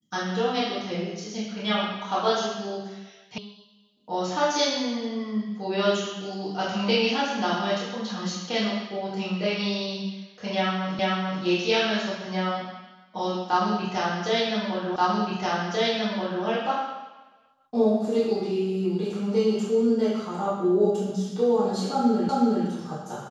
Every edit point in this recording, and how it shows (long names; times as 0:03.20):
0:03.38: cut off before it has died away
0:10.99: the same again, the last 0.44 s
0:14.96: the same again, the last 1.48 s
0:22.29: the same again, the last 0.37 s